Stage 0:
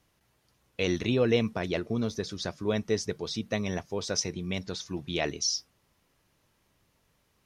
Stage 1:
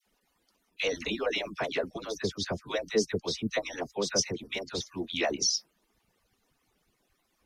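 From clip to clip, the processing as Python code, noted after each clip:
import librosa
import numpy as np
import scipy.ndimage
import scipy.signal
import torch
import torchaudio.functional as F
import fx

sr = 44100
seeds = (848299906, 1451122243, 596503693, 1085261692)

y = fx.hpss_only(x, sr, part='percussive')
y = fx.dispersion(y, sr, late='lows', ms=63.0, hz=950.0)
y = y * 10.0 ** (2.0 / 20.0)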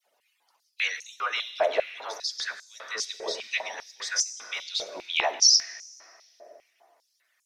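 y = fx.rev_plate(x, sr, seeds[0], rt60_s=3.7, hf_ratio=0.45, predelay_ms=0, drr_db=7.5)
y = fx.filter_held_highpass(y, sr, hz=5.0, low_hz=610.0, high_hz=7000.0)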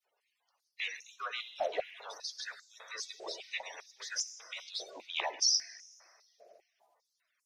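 y = fx.spec_quant(x, sr, step_db=30)
y = y * 10.0 ** (-9.0 / 20.0)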